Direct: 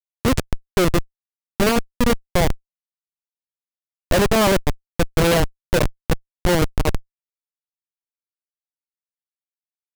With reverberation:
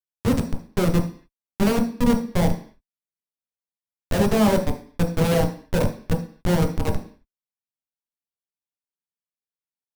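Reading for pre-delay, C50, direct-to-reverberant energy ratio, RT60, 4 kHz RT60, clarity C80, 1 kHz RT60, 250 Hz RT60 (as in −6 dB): 10 ms, 9.5 dB, 1.5 dB, 0.45 s, can't be measured, 14.5 dB, 0.45 s, 0.55 s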